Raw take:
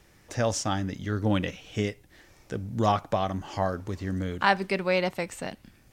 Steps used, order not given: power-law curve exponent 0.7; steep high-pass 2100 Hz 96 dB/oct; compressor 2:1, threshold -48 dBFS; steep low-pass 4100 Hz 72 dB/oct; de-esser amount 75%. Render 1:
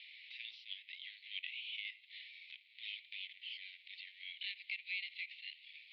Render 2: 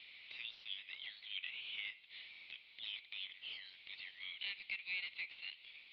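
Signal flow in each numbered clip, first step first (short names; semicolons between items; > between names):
power-law curve > steep high-pass > compressor > de-esser > steep low-pass; steep high-pass > de-esser > power-law curve > compressor > steep low-pass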